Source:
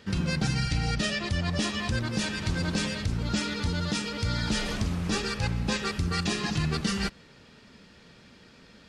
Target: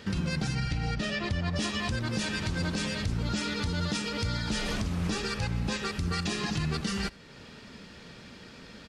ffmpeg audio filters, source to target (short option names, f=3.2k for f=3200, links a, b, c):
-filter_complex "[0:a]asettb=1/sr,asplit=3[a][b][c];[a]atrim=end=0.554[d];[b]atrim=start=0.55:end=1.56,asetpts=PTS-STARTPTS,afade=t=in:d=0.004:c=qsin,afade=t=out:st=1.006:d=0.004:c=qsin,lowpass=f=3.2k:p=1[e];[c]atrim=start=1.556[f];[d][e]acrossfade=d=0.004:c1=hsin:c2=qsin[g];[g][f]acrossfade=d=0.004:c1=qsin:c2=hsin,alimiter=level_in=2.5dB:limit=-24dB:level=0:latency=1:release=354,volume=-2.5dB,asplit=2[h][i];[i]aecho=0:1:79:0.0708[j];[h][j]amix=inputs=2:normalize=0,volume=5.5dB"